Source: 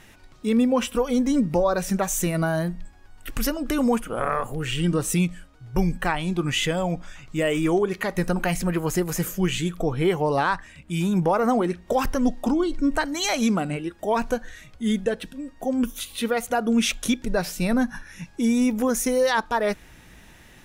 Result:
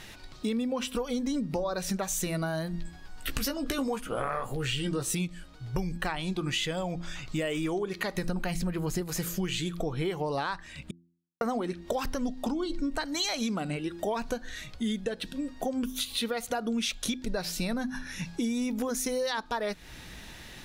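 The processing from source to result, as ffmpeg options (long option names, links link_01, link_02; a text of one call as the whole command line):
ffmpeg -i in.wav -filter_complex "[0:a]asettb=1/sr,asplit=3[link_01][link_02][link_03];[link_01]atrim=end=2.724[link_04];[link_02]atrim=start=2.72:end=5.15,asetpts=PTS-STARTPTS,afade=type=in:duration=0.004:curve=qsin,afade=type=out:start_time=2.426:duration=0.004:curve=qsin,asplit=2[link_05][link_06];[link_06]adelay=15,volume=-5dB[link_07];[link_05][link_07]amix=inputs=2:normalize=0,atrim=end_sample=107163[link_08];[link_03]atrim=start=5.146[link_09];[link_04][link_08]acrossfade=duration=0.004:curve1=hsin:curve2=qsin[link_10];[link_10][link_09]acrossfade=duration=0.004:curve1=qsin:curve2=hsin,asettb=1/sr,asplit=3[link_11][link_12][link_13];[link_11]atrim=end=8.244[link_14];[link_12]atrim=start=8.24:end=9.01,asetpts=PTS-STARTPTS,afade=type=in:duration=0.004:curve=qsin,afade=type=out:start_time=0.766:duration=0.004:curve=qsin,lowshelf=frequency=240:gain=8.5[link_15];[link_13]atrim=start=9.006[link_16];[link_14][link_15]acrossfade=duration=0.004:curve1=hsin:curve2=qsin[link_17];[link_17][link_16]acrossfade=duration=0.004:curve1=qsin:curve2=hsin,asplit=3[link_18][link_19][link_20];[link_18]atrim=end=10.91,asetpts=PTS-STARTPTS,afade=type=out:start_time=10.906:duration=0.004:curve=hsin[link_21];[link_19]atrim=start=10.91:end=11.41,asetpts=PTS-STARTPTS,volume=0[link_22];[link_20]atrim=start=11.41,asetpts=PTS-STARTPTS,afade=type=in:duration=0.004:curve=hsin[link_23];[link_21][link_22][link_23]concat=n=3:v=0:a=1,equalizer=frequency=4200:width=1.8:gain=8.5,bandreject=frequency=85.25:width_type=h:width=4,bandreject=frequency=170.5:width_type=h:width=4,bandreject=frequency=255.75:width_type=h:width=4,bandreject=frequency=341:width_type=h:width=4,acompressor=threshold=-31dB:ratio=6,volume=2.5dB" out.wav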